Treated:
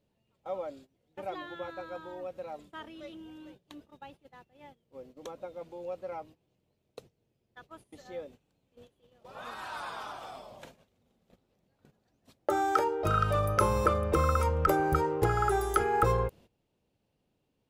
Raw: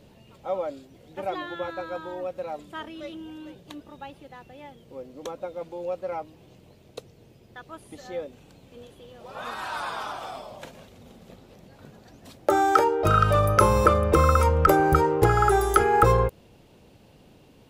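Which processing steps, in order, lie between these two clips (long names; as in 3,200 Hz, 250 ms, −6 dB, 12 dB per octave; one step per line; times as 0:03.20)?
noise gate −44 dBFS, range −16 dB
level −7.5 dB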